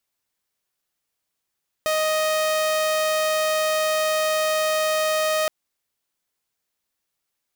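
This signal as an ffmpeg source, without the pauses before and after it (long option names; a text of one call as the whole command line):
ffmpeg -f lavfi -i "aevalsrc='0.141*(2*mod(624*t,1)-1)':duration=3.62:sample_rate=44100" out.wav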